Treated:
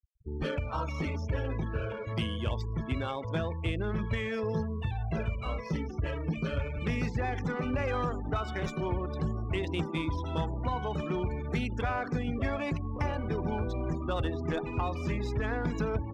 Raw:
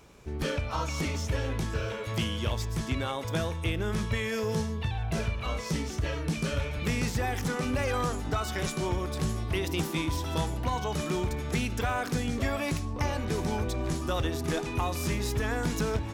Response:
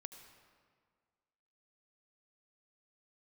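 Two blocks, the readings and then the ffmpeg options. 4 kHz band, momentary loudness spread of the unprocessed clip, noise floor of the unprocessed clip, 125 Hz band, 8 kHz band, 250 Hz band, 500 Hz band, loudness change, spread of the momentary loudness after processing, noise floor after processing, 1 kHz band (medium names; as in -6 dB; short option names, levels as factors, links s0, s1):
-7.0 dB, 2 LU, -36 dBFS, -1.5 dB, -18.0 dB, -1.5 dB, -1.5 dB, -2.0 dB, 3 LU, -39 dBFS, -2.0 dB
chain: -af "afftfilt=real='re*gte(hypot(re,im),0.0158)':imag='im*gte(hypot(re,im),0.0158)':win_size=1024:overlap=0.75,adynamicsmooth=sensitivity=3.5:basefreq=3000,volume=0.841"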